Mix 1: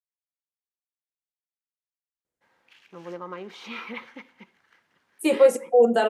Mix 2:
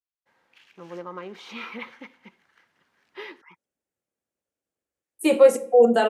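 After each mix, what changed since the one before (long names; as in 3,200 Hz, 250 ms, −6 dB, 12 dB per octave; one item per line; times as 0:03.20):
first voice: entry −2.15 s
second voice: send +6.0 dB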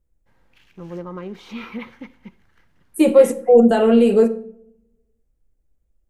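second voice: entry −2.25 s
master: remove meter weighting curve A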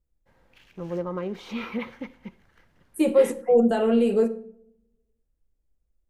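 first voice: add parametric band 560 Hz +5 dB 0.69 octaves
second voice −7.0 dB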